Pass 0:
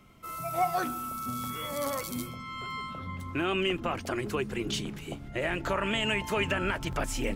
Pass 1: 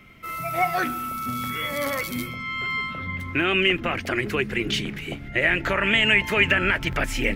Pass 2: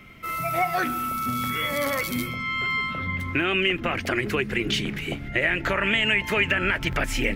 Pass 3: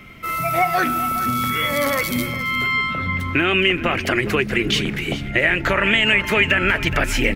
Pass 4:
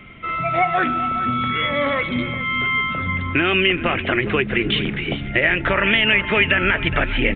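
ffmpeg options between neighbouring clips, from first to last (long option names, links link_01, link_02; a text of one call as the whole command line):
ffmpeg -i in.wav -af "equalizer=frequency=1000:width_type=o:width=1:gain=-6,equalizer=frequency=2000:width_type=o:width=1:gain=11,equalizer=frequency=8000:width_type=o:width=1:gain=-6,volume=5.5dB" out.wav
ffmpeg -i in.wav -af "acompressor=threshold=-25dB:ratio=2,volume=2.5dB" out.wav
ffmpeg -i in.wav -af "aecho=1:1:417:0.188,volume=5.5dB" out.wav
ffmpeg -i in.wav -af "aresample=8000,aresample=44100" out.wav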